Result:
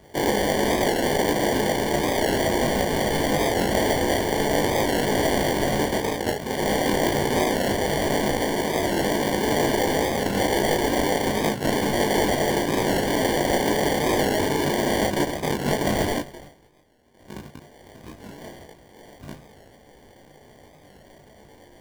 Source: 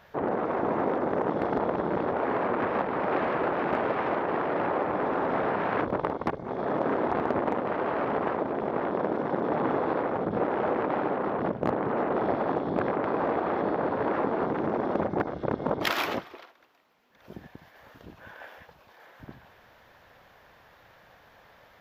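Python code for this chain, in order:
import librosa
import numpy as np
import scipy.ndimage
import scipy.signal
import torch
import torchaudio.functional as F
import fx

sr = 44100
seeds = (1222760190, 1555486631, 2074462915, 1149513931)

y = fx.sample_hold(x, sr, seeds[0], rate_hz=1300.0, jitter_pct=0)
y = np.clip(10.0 ** (21.5 / 20.0) * y, -1.0, 1.0) / 10.0 ** (21.5 / 20.0)
y = fx.room_early_taps(y, sr, ms=(20, 34), db=(-3.0, -4.5))
y = fx.record_warp(y, sr, rpm=45.0, depth_cents=100.0)
y = y * librosa.db_to_amplitude(3.5)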